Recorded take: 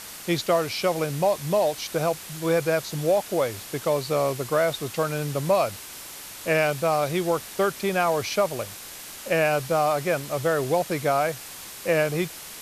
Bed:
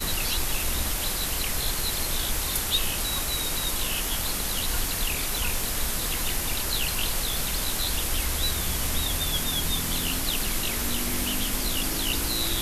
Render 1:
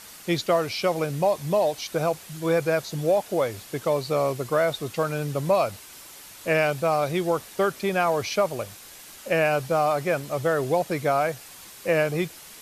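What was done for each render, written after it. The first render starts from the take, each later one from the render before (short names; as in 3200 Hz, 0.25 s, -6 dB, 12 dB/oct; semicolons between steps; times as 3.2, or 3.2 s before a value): denoiser 6 dB, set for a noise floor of -40 dBFS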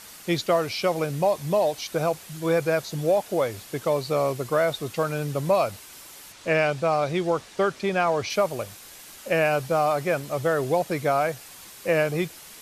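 6.32–8.3 LPF 7000 Hz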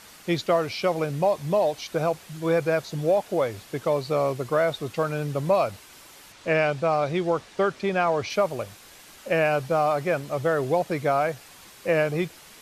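high shelf 5800 Hz -8 dB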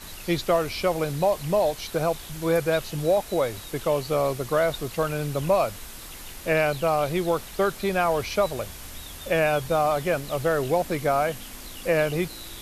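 add bed -13.5 dB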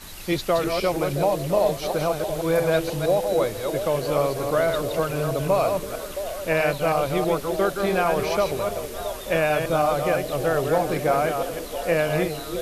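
reverse delay 0.161 s, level -5 dB; delay with a stepping band-pass 0.335 s, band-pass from 310 Hz, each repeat 0.7 oct, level -5.5 dB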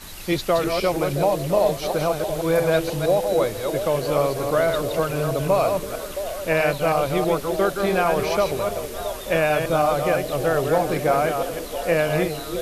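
gain +1.5 dB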